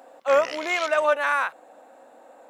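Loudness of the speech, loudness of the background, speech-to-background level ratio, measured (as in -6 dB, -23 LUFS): -23.0 LUFS, -35.5 LUFS, 12.5 dB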